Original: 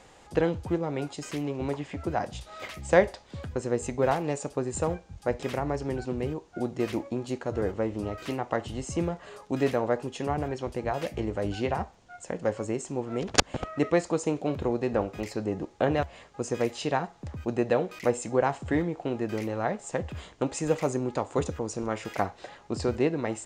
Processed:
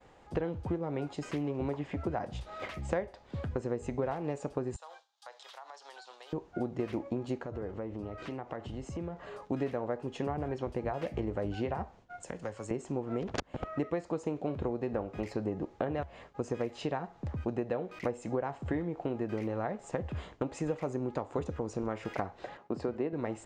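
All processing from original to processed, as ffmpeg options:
ffmpeg -i in.wav -filter_complex "[0:a]asettb=1/sr,asplit=3[link_01][link_02][link_03];[link_01]atrim=end=4.764[link_04];[link_02]atrim=start=4.76:end=6.33,asetpts=PTS-STARTPTS,afade=type=in:duration=0.004:curve=qsin,afade=type=out:start_time=1.566:duration=0.004:curve=qsin,highpass=frequency=840:width=0.5412,highpass=frequency=840:width=1.3066,highshelf=frequency=2900:width_type=q:width=3:gain=7,acompressor=threshold=-43dB:ratio=8:attack=3.2:release=140:knee=1:detection=peak[link_05];[link_03]atrim=start=6.326[link_06];[link_04][link_05]acrossfade=duration=0.004:curve1=hsin:curve2=qsin[link_07];[link_07][link_06]acrossfade=duration=0.004:curve1=qsin:curve2=hsin,asettb=1/sr,asplit=3[link_08][link_09][link_10];[link_08]atrim=end=7.454[link_11];[link_09]atrim=start=7.45:end=9.36,asetpts=PTS-STARTPTS,afade=type=in:duration=0.004:curve=qsin,afade=type=out:start_time=1.906:duration=0.004:curve=qsin,lowpass=8800,acompressor=threshold=-39dB:ratio=3:attack=3.2:release=140:knee=1:detection=peak[link_12];[link_10]atrim=start=9.356[link_13];[link_11][link_12]acrossfade=duration=0.004:curve1=hsin:curve2=qsin[link_14];[link_14][link_13]acrossfade=duration=0.004:curve1=qsin:curve2=hsin,asettb=1/sr,asplit=3[link_15][link_16][link_17];[link_15]atrim=end=12.234[link_18];[link_16]atrim=start=12.23:end=12.71,asetpts=PTS-STARTPTS,afade=type=in:duration=0.004:curve=qsin,afade=type=out:start_time=0.476:duration=0.004:curve=qsin,acrossover=split=120|790[link_19][link_20][link_21];[link_19]acompressor=threshold=-51dB:ratio=4[link_22];[link_20]acompressor=threshold=-42dB:ratio=4[link_23];[link_21]acompressor=threshold=-44dB:ratio=4[link_24];[link_22][link_23][link_24]amix=inputs=3:normalize=0,aemphasis=mode=production:type=75fm[link_25];[link_17]atrim=start=12.706[link_26];[link_18][link_25]acrossfade=duration=0.004:curve1=hsin:curve2=qsin[link_27];[link_27][link_26]acrossfade=duration=0.004:curve1=qsin:curve2=hsin,asettb=1/sr,asplit=3[link_28][link_29][link_30];[link_28]atrim=end=22.574[link_31];[link_29]atrim=start=22.57:end=23.13,asetpts=PTS-STARTPTS,afade=type=in:duration=0.004:curve=qsin,afade=type=out:start_time=0.556:duration=0.004:curve=qsin,highpass=170,highshelf=frequency=3400:gain=-9[link_32];[link_30]atrim=start=23.126[link_33];[link_31][link_32]acrossfade=duration=0.004:curve1=hsin:curve2=qsin[link_34];[link_34][link_33]acrossfade=duration=0.004:curve1=qsin:curve2=hsin,agate=range=-33dB:threshold=-49dB:ratio=3:detection=peak,acompressor=threshold=-31dB:ratio=6,lowpass=frequency=1700:poles=1,volume=1.5dB" out.wav

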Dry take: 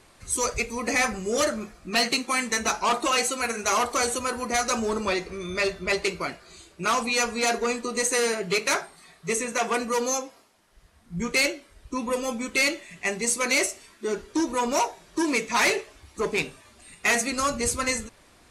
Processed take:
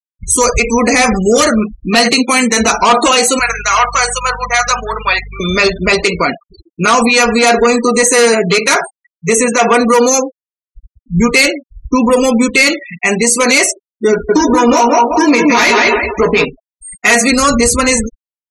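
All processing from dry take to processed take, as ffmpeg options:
ffmpeg -i in.wav -filter_complex "[0:a]asettb=1/sr,asplit=3[link_01][link_02][link_03];[link_01]atrim=end=3.394[link_04];[link_02]atrim=start=3.39:end=5.4,asetpts=PTS-STARTPTS,afade=type=in:duration=0.004:curve=qsin,afade=type=out:start_time=2.006:duration=0.004:curve=qsin,highpass=1100,highshelf=frequency=4200:gain=-9.5,aeval=exprs='val(0)+0.00501*(sin(2*PI*50*n/s)+sin(2*PI*2*50*n/s)/2+sin(2*PI*3*50*n/s)/3+sin(2*PI*4*50*n/s)/4+sin(2*PI*5*50*n/s)/5)':channel_layout=same[link_05];[link_03]atrim=start=5.396[link_06];[link_04][link_05]acrossfade=duration=0.004:curve1=hsin:curve2=qsin[link_07];[link_07][link_06]acrossfade=duration=0.004:curve1=qsin:curve2=hsin,asettb=1/sr,asplit=3[link_08][link_09][link_10];[link_08]atrim=end=14.114[link_11];[link_09]atrim=start=14.11:end=16.45,asetpts=PTS-STARTPTS,afade=type=in:duration=0.004:curve=qsin,afade=type=out:start_time=2.336:duration=0.004:curve=qsin,equalizer=frequency=8700:width_type=o:width=0.32:gain=-12,asplit=2[link_12][link_13];[link_13]adelay=17,volume=-6dB[link_14];[link_12][link_14]amix=inputs=2:normalize=0,atrim=end_sample=103194,asplit=2[link_15][link_16];[link_16]adelay=179,lowpass=frequency=4100:poles=1,volume=-4dB,asplit=2[link_17][link_18];[link_18]adelay=179,lowpass=frequency=4100:poles=1,volume=0.35,asplit=2[link_19][link_20];[link_20]adelay=179,lowpass=frequency=4100:poles=1,volume=0.35,asplit=2[link_21][link_22];[link_22]adelay=179,lowpass=frequency=4100:poles=1,volume=0.35[link_23];[link_15][link_17][link_19][link_21][link_23]amix=inputs=5:normalize=0,atrim=end_sample=103194[link_24];[link_10]atrim=start=16.446[link_25];[link_11][link_24]acrossfade=duration=0.004:curve1=hsin:curve2=qsin[link_26];[link_26][link_25]acrossfade=duration=0.004:curve1=qsin:curve2=hsin,afftfilt=real='re*gte(hypot(re,im),0.0178)':imag='im*gte(hypot(re,im),0.0178)':win_size=1024:overlap=0.75,aecho=1:1:4.2:0.4,alimiter=level_in=20dB:limit=-1dB:release=50:level=0:latency=1,volume=-1dB" out.wav

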